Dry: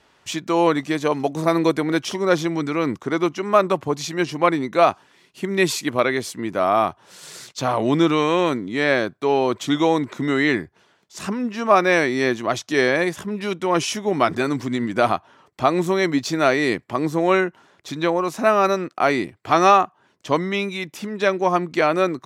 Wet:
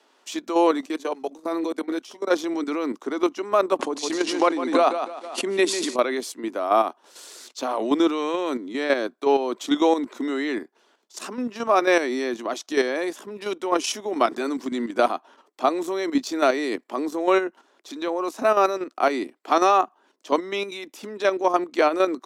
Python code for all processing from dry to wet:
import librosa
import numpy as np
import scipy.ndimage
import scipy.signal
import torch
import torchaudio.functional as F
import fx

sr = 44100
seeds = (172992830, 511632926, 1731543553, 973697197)

y = fx.chain(x, sr, fx.doubler(ms=12.0, db=-6),
    fx.level_steps(step_db=21), at=(0.81, 2.31))
y = fx.chain(y, sr, fx.echo_feedback(ms=152, feedback_pct=30, wet_db=-7),
    fx.resample_bad(factor=2, down='none', up='filtered'),
    fx.pre_swell(db_per_s=64.0), at=(3.79, 5.96))
y = scipy.signal.sosfilt(scipy.signal.butter(8, 240.0, 'highpass', fs=sr, output='sos'), y)
y = fx.peak_eq(y, sr, hz=2000.0, db=-5.0, octaves=0.95)
y = fx.level_steps(y, sr, step_db=9)
y = y * librosa.db_to_amplitude(1.5)